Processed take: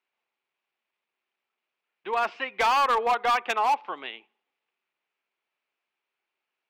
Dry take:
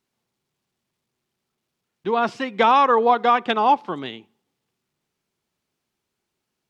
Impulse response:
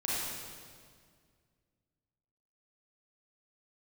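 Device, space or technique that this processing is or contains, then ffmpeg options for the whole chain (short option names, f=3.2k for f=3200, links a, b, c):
megaphone: -af "highpass=630,lowpass=2.7k,equalizer=f=2.5k:t=o:w=0.57:g=7.5,asoftclip=type=hard:threshold=-16dB,volume=-2.5dB"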